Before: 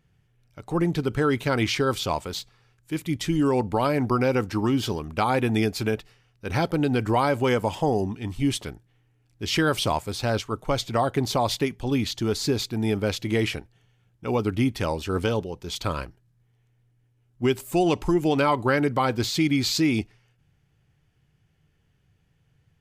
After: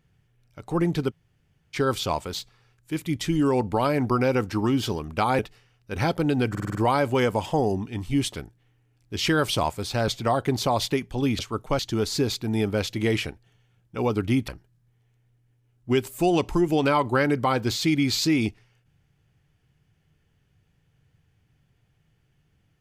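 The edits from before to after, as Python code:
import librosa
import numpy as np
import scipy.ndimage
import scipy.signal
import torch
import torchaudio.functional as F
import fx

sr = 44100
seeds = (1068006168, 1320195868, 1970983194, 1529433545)

y = fx.edit(x, sr, fx.room_tone_fill(start_s=1.1, length_s=0.65, crossfade_s=0.04),
    fx.cut(start_s=5.39, length_s=0.54),
    fx.stutter(start_s=7.04, slice_s=0.05, count=6),
    fx.move(start_s=10.37, length_s=0.4, to_s=12.08),
    fx.cut(start_s=14.77, length_s=1.24), tone=tone)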